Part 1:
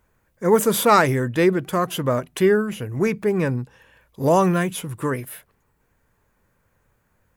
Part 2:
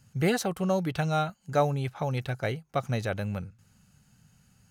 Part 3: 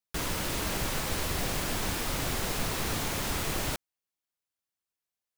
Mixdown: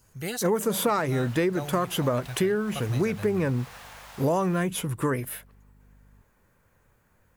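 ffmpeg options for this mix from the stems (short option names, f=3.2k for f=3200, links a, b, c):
-filter_complex "[0:a]adynamicequalizer=threshold=0.0251:dfrequency=1600:dqfactor=0.7:tfrequency=1600:tqfactor=0.7:attack=5:release=100:ratio=0.375:range=2.5:mode=cutabove:tftype=highshelf,volume=1dB[a];[1:a]asubboost=boost=6:cutoff=110,crystalizer=i=3.5:c=0,volume=-9dB[b];[2:a]highpass=f=670:w=0.5412,highpass=f=670:w=1.3066,highshelf=f=2.7k:g=-10,aeval=exprs='val(0)+0.00447*(sin(2*PI*50*n/s)+sin(2*PI*2*50*n/s)/2+sin(2*PI*3*50*n/s)/3+sin(2*PI*4*50*n/s)/4+sin(2*PI*5*50*n/s)/5)':c=same,adelay=850,volume=-7.5dB[c];[a][b][c]amix=inputs=3:normalize=0,acompressor=threshold=-21dB:ratio=10"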